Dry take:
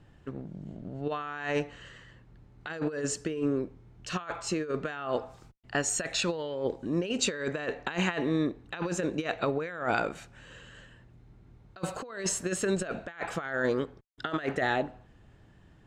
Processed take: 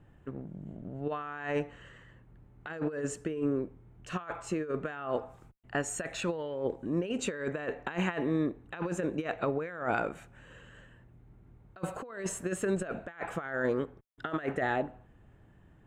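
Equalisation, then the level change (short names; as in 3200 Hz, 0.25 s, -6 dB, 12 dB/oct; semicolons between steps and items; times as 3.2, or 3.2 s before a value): bell 4800 Hz -14 dB 1.1 oct; -1.5 dB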